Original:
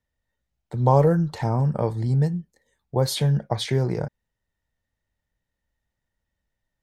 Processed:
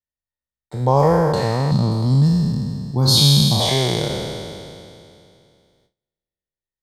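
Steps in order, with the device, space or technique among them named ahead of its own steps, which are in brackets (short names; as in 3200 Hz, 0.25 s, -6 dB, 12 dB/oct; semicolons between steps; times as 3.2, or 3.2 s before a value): spectral trails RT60 2.58 s; gate with hold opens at -53 dBFS; 1.71–3.6 graphic EQ 125/250/500/2000/4000 Hz +4/+9/-12/-11/+8 dB; presence and air boost (bell 4500 Hz +4.5 dB 1.1 oct; high shelf 9000 Hz +3.5 dB)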